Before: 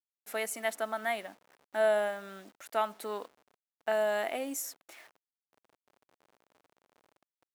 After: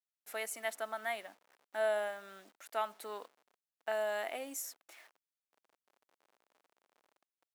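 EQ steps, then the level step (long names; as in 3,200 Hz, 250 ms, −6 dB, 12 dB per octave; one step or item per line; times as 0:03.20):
high-pass filter 480 Hz 6 dB per octave
−4.0 dB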